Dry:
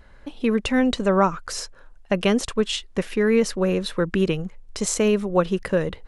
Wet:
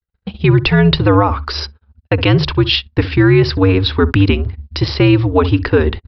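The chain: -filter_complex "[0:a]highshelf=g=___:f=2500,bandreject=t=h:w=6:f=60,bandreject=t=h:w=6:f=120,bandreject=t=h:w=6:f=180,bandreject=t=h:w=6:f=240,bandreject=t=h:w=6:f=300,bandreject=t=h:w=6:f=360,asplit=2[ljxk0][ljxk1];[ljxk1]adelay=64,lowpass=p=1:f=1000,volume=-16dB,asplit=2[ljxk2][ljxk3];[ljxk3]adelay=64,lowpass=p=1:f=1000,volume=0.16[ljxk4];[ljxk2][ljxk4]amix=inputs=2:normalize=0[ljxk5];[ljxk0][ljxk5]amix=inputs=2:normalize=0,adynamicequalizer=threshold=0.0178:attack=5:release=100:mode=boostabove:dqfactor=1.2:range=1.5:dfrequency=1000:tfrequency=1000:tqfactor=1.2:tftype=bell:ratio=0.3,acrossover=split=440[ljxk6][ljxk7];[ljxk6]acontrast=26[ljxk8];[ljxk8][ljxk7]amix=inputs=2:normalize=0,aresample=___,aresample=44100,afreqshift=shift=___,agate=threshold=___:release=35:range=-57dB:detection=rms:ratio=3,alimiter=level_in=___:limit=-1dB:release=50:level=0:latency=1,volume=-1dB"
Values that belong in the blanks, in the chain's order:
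9.5, 11025, -88, -32dB, 7.5dB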